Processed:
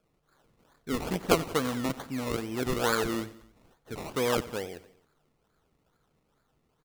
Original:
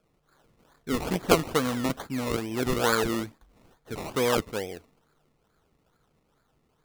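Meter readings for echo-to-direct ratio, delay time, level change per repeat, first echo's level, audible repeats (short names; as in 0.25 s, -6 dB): -16.5 dB, 91 ms, -4.5 dB, -18.0 dB, 3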